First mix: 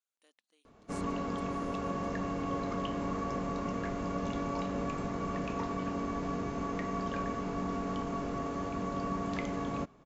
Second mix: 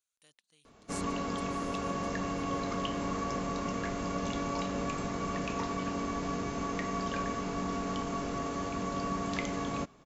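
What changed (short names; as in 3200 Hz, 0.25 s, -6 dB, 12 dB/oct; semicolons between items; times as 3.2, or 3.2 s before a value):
speech: remove brick-wall FIR high-pass 200 Hz; master: add high shelf 2500 Hz +10 dB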